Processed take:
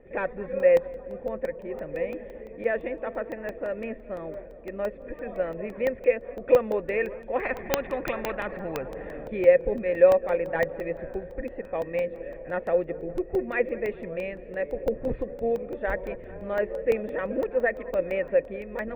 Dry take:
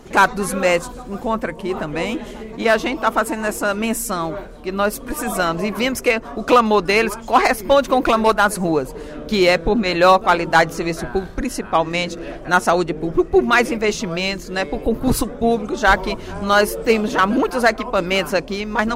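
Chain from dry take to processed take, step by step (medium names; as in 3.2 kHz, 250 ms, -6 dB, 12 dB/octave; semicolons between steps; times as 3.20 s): cascade formant filter e; bass shelf 140 Hz +10.5 dB; tape echo 205 ms, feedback 90%, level -19 dB, low-pass 1.5 kHz; crackling interface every 0.17 s, samples 64, zero, from 0.60 s; 7.43–9.28 s: spectrum-flattening compressor 2:1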